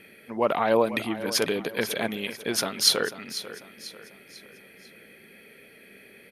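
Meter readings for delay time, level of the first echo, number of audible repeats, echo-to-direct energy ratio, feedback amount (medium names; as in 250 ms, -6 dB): 494 ms, -14.0 dB, 3, -13.0 dB, 43%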